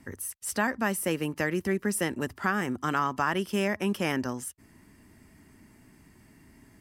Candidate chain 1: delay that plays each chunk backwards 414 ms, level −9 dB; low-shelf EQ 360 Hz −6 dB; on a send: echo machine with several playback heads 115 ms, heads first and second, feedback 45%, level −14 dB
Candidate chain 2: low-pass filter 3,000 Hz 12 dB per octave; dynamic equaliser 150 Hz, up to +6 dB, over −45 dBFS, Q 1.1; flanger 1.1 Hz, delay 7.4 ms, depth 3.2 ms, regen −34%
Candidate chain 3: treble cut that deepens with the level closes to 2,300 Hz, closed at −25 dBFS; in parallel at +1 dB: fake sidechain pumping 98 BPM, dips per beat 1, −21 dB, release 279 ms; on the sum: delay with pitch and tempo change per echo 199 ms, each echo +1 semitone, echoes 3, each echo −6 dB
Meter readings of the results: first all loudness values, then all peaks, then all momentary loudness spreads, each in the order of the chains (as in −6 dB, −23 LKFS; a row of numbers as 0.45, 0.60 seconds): −30.0, −32.0, −23.0 LKFS; −12.5, −14.5, −6.5 dBFS; 10, 7, 9 LU